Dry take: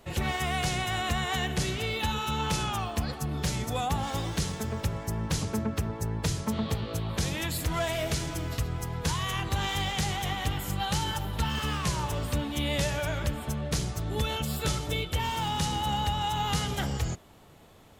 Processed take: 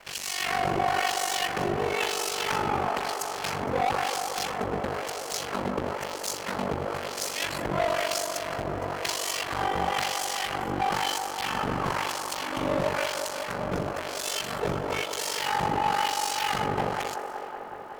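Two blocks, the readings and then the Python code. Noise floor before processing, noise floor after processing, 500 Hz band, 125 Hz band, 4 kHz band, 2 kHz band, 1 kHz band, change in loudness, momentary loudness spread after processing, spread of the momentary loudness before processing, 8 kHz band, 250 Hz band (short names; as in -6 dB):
-43 dBFS, -37 dBFS, +5.5 dB, -8.5 dB, +1.0 dB, +3.5 dB, +5.0 dB, +1.5 dB, 6 LU, 4 LU, +3.0 dB, -2.0 dB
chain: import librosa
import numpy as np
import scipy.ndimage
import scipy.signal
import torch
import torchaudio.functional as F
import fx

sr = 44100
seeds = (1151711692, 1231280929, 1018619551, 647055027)

p1 = fx.halfwave_hold(x, sr)
p2 = fx.high_shelf(p1, sr, hz=10000.0, db=8.5)
p3 = fx.notch(p2, sr, hz=3700.0, q=11.0)
p4 = fx.filter_lfo_bandpass(p3, sr, shape='sine', hz=1.0, low_hz=510.0, high_hz=6500.0, q=0.88)
p5 = fx.dmg_noise_colour(p4, sr, seeds[0], colour='pink', level_db=-69.0)
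p6 = fx.fold_sine(p5, sr, drive_db=11, ceiling_db=-15.0)
p7 = p5 + (p6 * librosa.db_to_amplitude(-5.5))
p8 = p7 * np.sin(2.0 * np.pi * 24.0 * np.arange(len(p7)) / sr)
p9 = fx.echo_wet_bandpass(p8, sr, ms=186, feedback_pct=80, hz=760.0, wet_db=-6.0)
y = p9 * librosa.db_to_amplitude(-3.0)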